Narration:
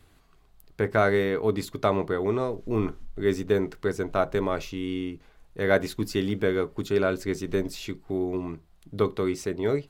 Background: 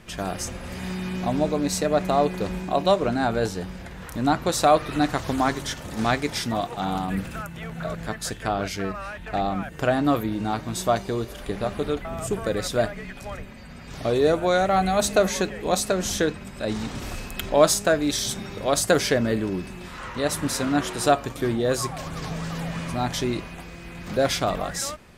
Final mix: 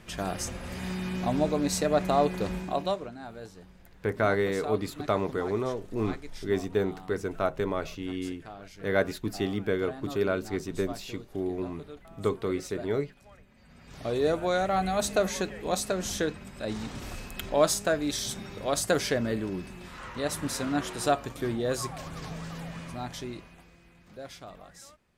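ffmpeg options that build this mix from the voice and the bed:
-filter_complex "[0:a]adelay=3250,volume=0.668[s0];[1:a]volume=3.16,afade=t=out:st=2.53:d=0.58:silence=0.158489,afade=t=in:st=13.49:d=0.75:silence=0.223872,afade=t=out:st=21.96:d=2.09:silence=0.177828[s1];[s0][s1]amix=inputs=2:normalize=0"

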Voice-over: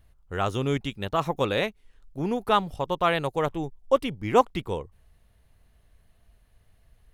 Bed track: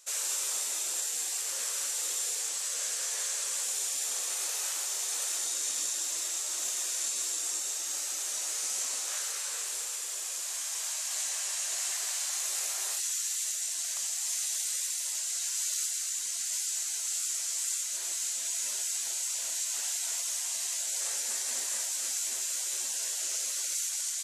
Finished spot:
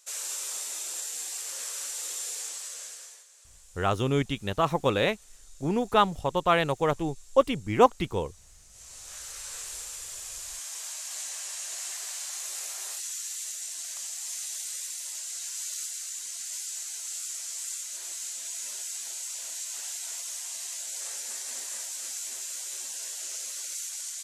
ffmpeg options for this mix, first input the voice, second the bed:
-filter_complex "[0:a]adelay=3450,volume=1.06[s0];[1:a]volume=7.5,afade=t=out:st=2.42:d=0.83:silence=0.0891251,afade=t=in:st=8.7:d=0.87:silence=0.1[s1];[s0][s1]amix=inputs=2:normalize=0"

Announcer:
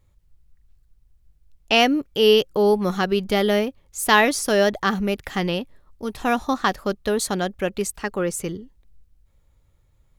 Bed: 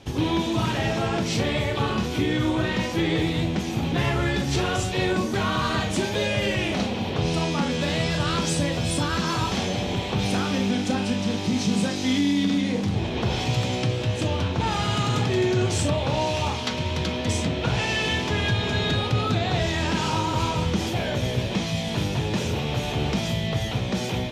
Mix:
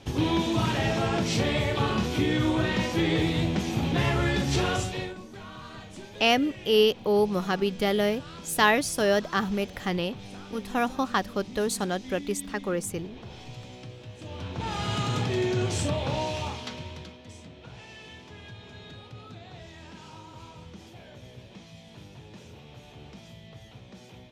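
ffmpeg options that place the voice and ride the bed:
-filter_complex "[0:a]adelay=4500,volume=0.562[s0];[1:a]volume=4.22,afade=t=out:st=4.7:d=0.45:silence=0.141254,afade=t=in:st=14.2:d=0.74:silence=0.199526,afade=t=out:st=16.11:d=1.07:silence=0.141254[s1];[s0][s1]amix=inputs=2:normalize=0"

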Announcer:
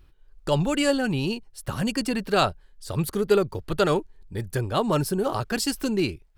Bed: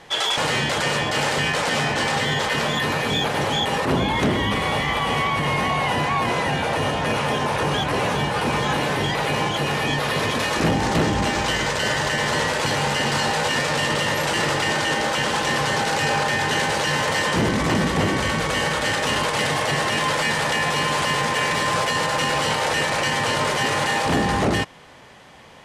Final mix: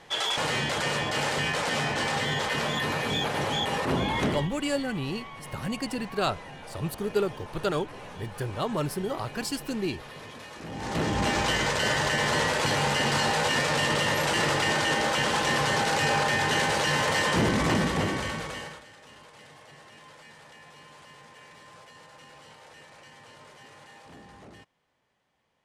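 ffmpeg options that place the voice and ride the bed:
-filter_complex "[0:a]adelay=3850,volume=0.501[s0];[1:a]volume=3.76,afade=t=out:st=4.26:d=0.23:silence=0.177828,afade=t=in:st=10.68:d=0.63:silence=0.133352,afade=t=out:st=17.65:d=1.2:silence=0.0530884[s1];[s0][s1]amix=inputs=2:normalize=0"

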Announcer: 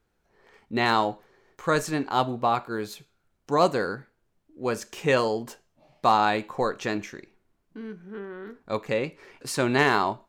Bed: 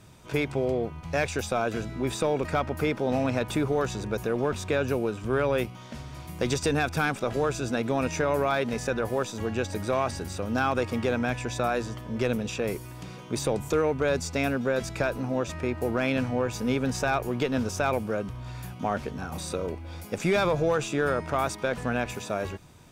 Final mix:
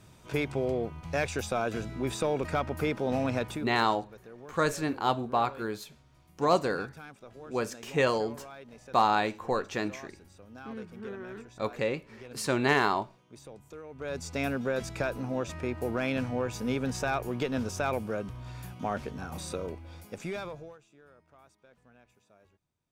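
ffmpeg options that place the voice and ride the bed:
-filter_complex "[0:a]adelay=2900,volume=0.668[s0];[1:a]volume=5.01,afade=t=out:st=3.4:d=0.3:silence=0.125893,afade=t=in:st=13.89:d=0.54:silence=0.141254,afade=t=out:st=19.51:d=1.28:silence=0.0398107[s1];[s0][s1]amix=inputs=2:normalize=0"

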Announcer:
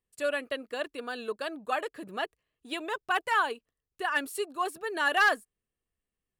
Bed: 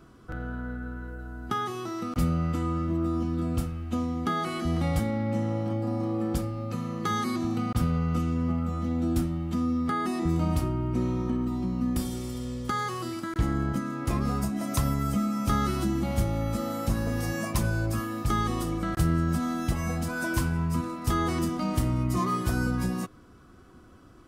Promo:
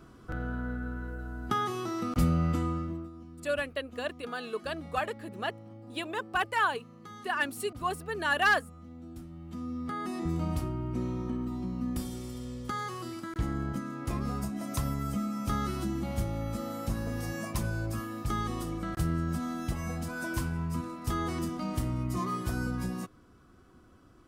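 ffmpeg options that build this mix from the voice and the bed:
-filter_complex "[0:a]adelay=3250,volume=0.891[s0];[1:a]volume=4.73,afade=t=out:st=2.52:d=0.58:silence=0.112202,afade=t=in:st=9.19:d=1.02:silence=0.211349[s1];[s0][s1]amix=inputs=2:normalize=0"

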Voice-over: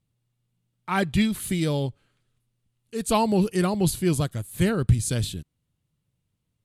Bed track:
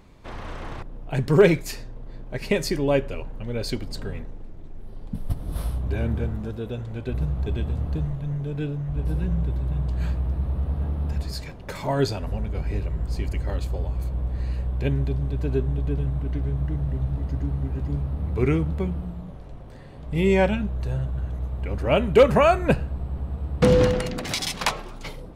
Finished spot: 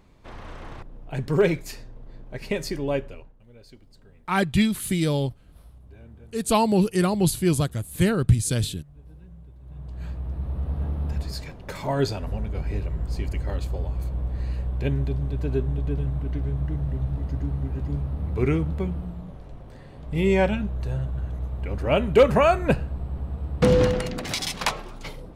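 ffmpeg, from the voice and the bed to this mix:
-filter_complex "[0:a]adelay=3400,volume=1.19[s0];[1:a]volume=6.31,afade=t=out:st=2.94:d=0.41:silence=0.141254,afade=t=in:st=9.59:d=1.24:silence=0.0944061[s1];[s0][s1]amix=inputs=2:normalize=0"

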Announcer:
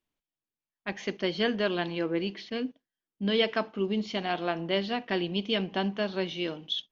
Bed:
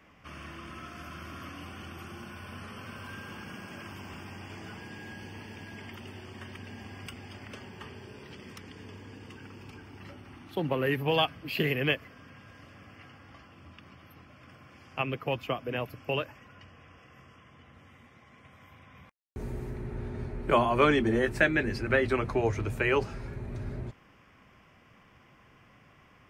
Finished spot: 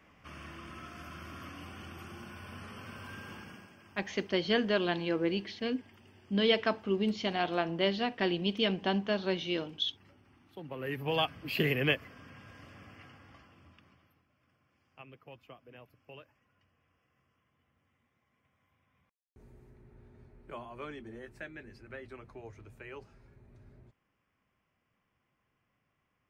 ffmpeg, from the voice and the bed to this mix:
-filter_complex "[0:a]adelay=3100,volume=0.891[s0];[1:a]volume=3.35,afade=t=out:st=3.32:d=0.43:silence=0.266073,afade=t=in:st=10.68:d=0.83:silence=0.211349,afade=t=out:st=12.78:d=1.44:silence=0.105925[s1];[s0][s1]amix=inputs=2:normalize=0"

